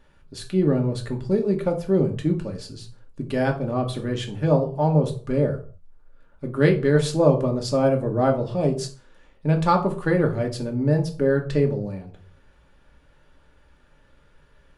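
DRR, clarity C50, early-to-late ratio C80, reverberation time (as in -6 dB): 2.0 dB, 12.0 dB, 17.0 dB, 0.45 s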